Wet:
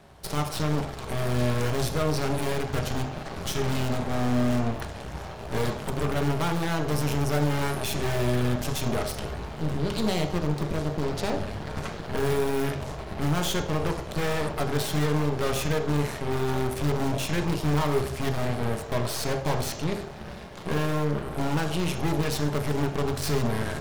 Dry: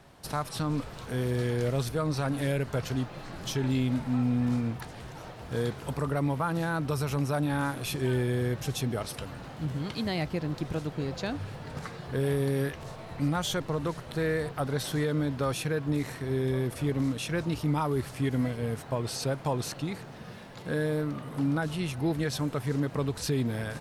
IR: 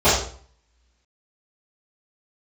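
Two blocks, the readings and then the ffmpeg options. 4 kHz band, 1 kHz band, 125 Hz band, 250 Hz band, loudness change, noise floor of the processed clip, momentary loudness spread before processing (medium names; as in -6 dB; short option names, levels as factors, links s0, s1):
+4.5 dB, +5.0 dB, +2.5 dB, +1.5 dB, +2.5 dB, -38 dBFS, 8 LU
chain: -filter_complex "[0:a]aeval=exprs='0.075*(abs(mod(val(0)/0.075+3,4)-2)-1)':c=same,aeval=exprs='0.075*(cos(1*acos(clip(val(0)/0.075,-1,1)))-cos(1*PI/2))+0.0237*(cos(4*acos(clip(val(0)/0.075,-1,1)))-cos(4*PI/2))+0.00944*(cos(8*acos(clip(val(0)/0.075,-1,1)))-cos(8*PI/2))':c=same,asplit=2[s0][s1];[1:a]atrim=start_sample=2205[s2];[s1][s2]afir=irnorm=-1:irlink=0,volume=0.0473[s3];[s0][s3]amix=inputs=2:normalize=0"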